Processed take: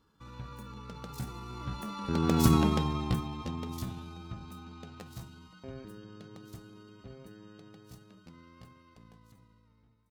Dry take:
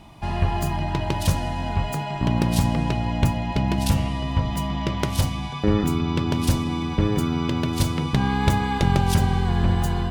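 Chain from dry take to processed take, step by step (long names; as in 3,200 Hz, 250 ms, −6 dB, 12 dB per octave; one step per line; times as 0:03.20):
fade-out on the ending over 2.61 s
source passing by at 0:02.55, 17 m/s, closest 3.6 metres
pitch shifter +5 semitones
level −1.5 dB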